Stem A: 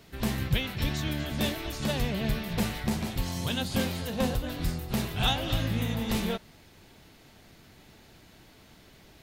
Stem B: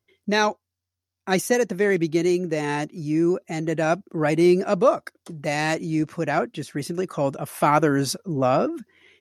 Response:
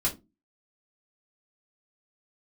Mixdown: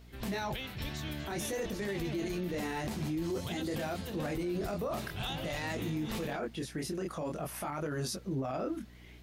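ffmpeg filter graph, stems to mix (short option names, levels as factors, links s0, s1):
-filter_complex "[0:a]acrossover=split=310[s0][s1];[s0]acompressor=threshold=0.0355:ratio=6[s2];[s2][s1]amix=inputs=2:normalize=0,aeval=exprs='val(0)+0.00501*(sin(2*PI*60*n/s)+sin(2*PI*2*60*n/s)/2+sin(2*PI*3*60*n/s)/3+sin(2*PI*4*60*n/s)/4+sin(2*PI*5*60*n/s)/5)':c=same,volume=0.447[s3];[1:a]alimiter=limit=0.158:level=0:latency=1,flanger=delay=20:depth=5.7:speed=0.5,volume=0.794[s4];[s3][s4]amix=inputs=2:normalize=0,alimiter=level_in=1.5:limit=0.0631:level=0:latency=1:release=26,volume=0.668"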